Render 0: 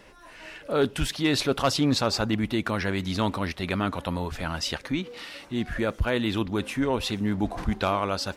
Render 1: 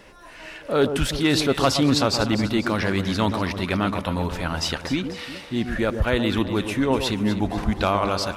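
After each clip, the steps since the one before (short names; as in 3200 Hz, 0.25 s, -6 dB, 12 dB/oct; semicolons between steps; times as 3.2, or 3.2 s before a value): echo with dull and thin repeats by turns 0.123 s, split 1100 Hz, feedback 66%, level -7.5 dB; gain +3.5 dB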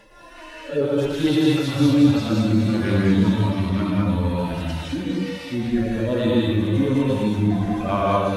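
median-filter separation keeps harmonic; non-linear reverb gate 0.24 s rising, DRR -3.5 dB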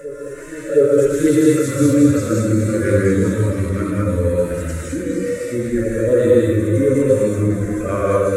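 EQ curve 110 Hz 0 dB, 210 Hz -7 dB, 520 Hz +10 dB, 780 Hz -23 dB, 1300 Hz +2 dB, 2100 Hz 0 dB, 3000 Hz -16 dB, 5200 Hz -6 dB, 7400 Hz +14 dB, 13000 Hz +5 dB; reverse echo 0.72 s -17 dB; gain +3.5 dB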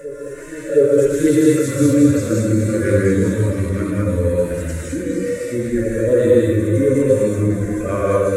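notch 1300 Hz, Q 9.5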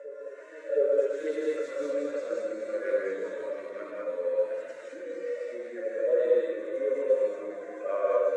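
ladder high-pass 510 Hz, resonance 50%; air absorption 160 m; gain -2.5 dB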